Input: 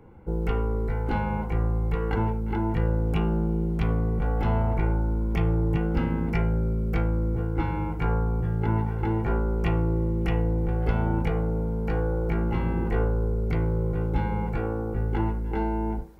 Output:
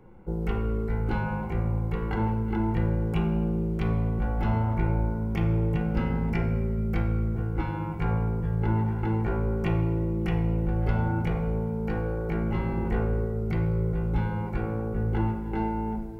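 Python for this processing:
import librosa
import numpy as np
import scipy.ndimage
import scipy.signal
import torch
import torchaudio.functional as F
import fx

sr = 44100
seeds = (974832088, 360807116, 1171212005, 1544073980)

y = fx.room_shoebox(x, sr, seeds[0], volume_m3=1700.0, walls='mixed', distance_m=1.0)
y = y * 10.0 ** (-2.5 / 20.0)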